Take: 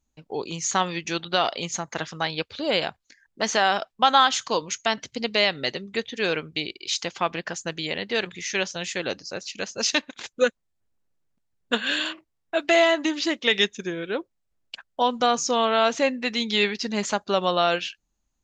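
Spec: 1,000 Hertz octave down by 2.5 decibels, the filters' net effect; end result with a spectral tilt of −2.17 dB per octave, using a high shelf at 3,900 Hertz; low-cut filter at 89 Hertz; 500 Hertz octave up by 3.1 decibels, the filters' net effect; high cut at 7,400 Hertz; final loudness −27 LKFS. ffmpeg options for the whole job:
ffmpeg -i in.wav -af "highpass=89,lowpass=7400,equalizer=frequency=500:width_type=o:gain=6,equalizer=frequency=1000:width_type=o:gain=-7,highshelf=frequency=3900:gain=6,volume=-4dB" out.wav

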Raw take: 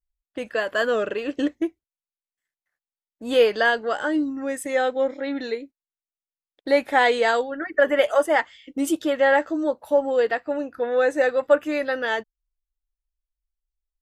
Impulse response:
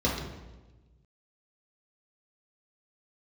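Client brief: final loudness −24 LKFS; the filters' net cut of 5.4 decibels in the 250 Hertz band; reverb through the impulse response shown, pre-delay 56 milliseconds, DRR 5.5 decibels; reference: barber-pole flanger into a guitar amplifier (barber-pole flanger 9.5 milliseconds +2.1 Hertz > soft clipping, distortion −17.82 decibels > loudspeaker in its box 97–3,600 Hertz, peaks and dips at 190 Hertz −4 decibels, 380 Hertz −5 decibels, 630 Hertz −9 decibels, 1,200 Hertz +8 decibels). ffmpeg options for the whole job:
-filter_complex "[0:a]equalizer=frequency=250:width_type=o:gain=-4.5,asplit=2[link_01][link_02];[1:a]atrim=start_sample=2205,adelay=56[link_03];[link_02][link_03]afir=irnorm=-1:irlink=0,volume=-17dB[link_04];[link_01][link_04]amix=inputs=2:normalize=0,asplit=2[link_05][link_06];[link_06]adelay=9.5,afreqshift=2.1[link_07];[link_05][link_07]amix=inputs=2:normalize=1,asoftclip=threshold=-14dB,highpass=97,equalizer=frequency=190:width_type=q:width=4:gain=-4,equalizer=frequency=380:width_type=q:width=4:gain=-5,equalizer=frequency=630:width_type=q:width=4:gain=-9,equalizer=frequency=1200:width_type=q:width=4:gain=8,lowpass=frequency=3600:width=0.5412,lowpass=frequency=3600:width=1.3066,volume=4dB"

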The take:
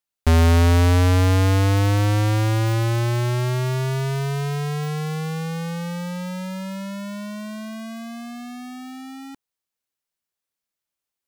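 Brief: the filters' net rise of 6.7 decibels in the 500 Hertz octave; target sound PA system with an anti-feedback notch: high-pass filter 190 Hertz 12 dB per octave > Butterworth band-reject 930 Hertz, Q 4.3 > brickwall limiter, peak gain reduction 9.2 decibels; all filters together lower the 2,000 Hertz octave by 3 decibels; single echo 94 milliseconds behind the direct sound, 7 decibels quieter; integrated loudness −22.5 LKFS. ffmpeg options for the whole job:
ffmpeg -i in.wav -af "highpass=190,asuperstop=centerf=930:order=8:qfactor=4.3,equalizer=frequency=500:width_type=o:gain=8.5,equalizer=frequency=2000:width_type=o:gain=-4.5,aecho=1:1:94:0.447,volume=4dB,alimiter=limit=-12dB:level=0:latency=1" out.wav

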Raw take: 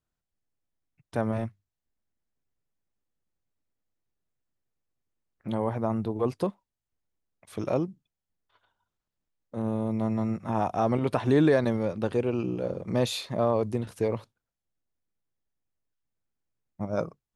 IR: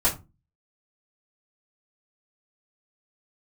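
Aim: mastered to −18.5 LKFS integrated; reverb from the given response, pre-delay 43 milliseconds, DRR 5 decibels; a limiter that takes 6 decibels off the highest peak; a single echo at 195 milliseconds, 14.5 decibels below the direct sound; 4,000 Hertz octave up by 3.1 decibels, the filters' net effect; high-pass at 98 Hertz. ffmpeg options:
-filter_complex "[0:a]highpass=98,equalizer=frequency=4000:width_type=o:gain=3.5,alimiter=limit=-16.5dB:level=0:latency=1,aecho=1:1:195:0.188,asplit=2[link_01][link_02];[1:a]atrim=start_sample=2205,adelay=43[link_03];[link_02][link_03]afir=irnorm=-1:irlink=0,volume=-18dB[link_04];[link_01][link_04]amix=inputs=2:normalize=0,volume=10.5dB"

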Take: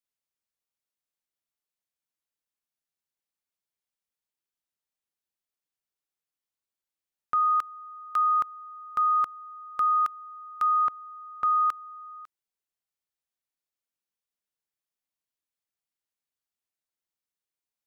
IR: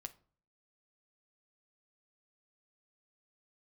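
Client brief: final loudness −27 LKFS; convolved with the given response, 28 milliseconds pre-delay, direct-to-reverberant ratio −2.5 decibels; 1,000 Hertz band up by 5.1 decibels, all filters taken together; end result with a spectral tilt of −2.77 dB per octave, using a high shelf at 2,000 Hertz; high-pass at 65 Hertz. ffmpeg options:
-filter_complex "[0:a]highpass=65,equalizer=frequency=1000:width_type=o:gain=8.5,highshelf=frequency=2000:gain=-3.5,asplit=2[link_01][link_02];[1:a]atrim=start_sample=2205,adelay=28[link_03];[link_02][link_03]afir=irnorm=-1:irlink=0,volume=7dB[link_04];[link_01][link_04]amix=inputs=2:normalize=0,volume=-7.5dB"

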